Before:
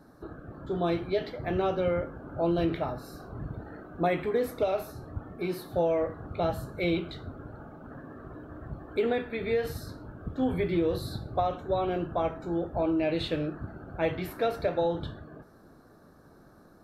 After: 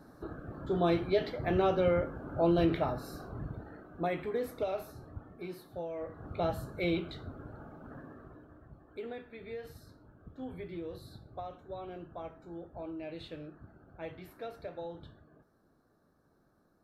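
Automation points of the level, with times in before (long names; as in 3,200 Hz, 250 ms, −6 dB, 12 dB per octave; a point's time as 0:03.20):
0:03.15 0 dB
0:03.84 −6.5 dB
0:05.00 −6.5 dB
0:05.92 −14 dB
0:06.28 −3.5 dB
0:08.01 −3.5 dB
0:08.68 −14.5 dB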